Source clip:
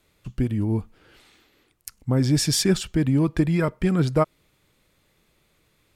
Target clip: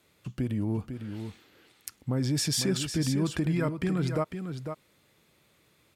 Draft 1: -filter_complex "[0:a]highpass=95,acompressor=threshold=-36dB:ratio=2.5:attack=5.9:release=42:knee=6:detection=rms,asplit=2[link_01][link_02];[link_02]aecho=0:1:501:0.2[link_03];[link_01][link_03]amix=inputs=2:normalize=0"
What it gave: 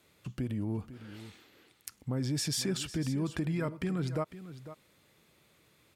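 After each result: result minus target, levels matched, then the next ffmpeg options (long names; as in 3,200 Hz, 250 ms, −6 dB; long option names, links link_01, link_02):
downward compressor: peak gain reduction +4.5 dB; echo-to-direct −6 dB
-filter_complex "[0:a]highpass=95,acompressor=threshold=-28.5dB:ratio=2.5:attack=5.9:release=42:knee=6:detection=rms,asplit=2[link_01][link_02];[link_02]aecho=0:1:501:0.2[link_03];[link_01][link_03]amix=inputs=2:normalize=0"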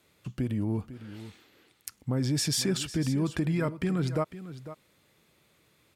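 echo-to-direct −6 dB
-filter_complex "[0:a]highpass=95,acompressor=threshold=-28.5dB:ratio=2.5:attack=5.9:release=42:knee=6:detection=rms,asplit=2[link_01][link_02];[link_02]aecho=0:1:501:0.398[link_03];[link_01][link_03]amix=inputs=2:normalize=0"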